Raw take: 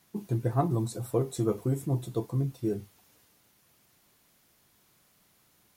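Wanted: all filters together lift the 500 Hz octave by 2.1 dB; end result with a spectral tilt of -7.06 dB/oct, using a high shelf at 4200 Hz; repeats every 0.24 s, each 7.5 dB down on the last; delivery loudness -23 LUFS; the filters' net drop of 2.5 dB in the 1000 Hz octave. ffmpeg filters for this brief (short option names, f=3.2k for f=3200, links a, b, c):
-af "equalizer=f=500:t=o:g=4,equalizer=f=1k:t=o:g=-6.5,highshelf=f=4.2k:g=-6,aecho=1:1:240|480|720|960|1200:0.422|0.177|0.0744|0.0312|0.0131,volume=6.5dB"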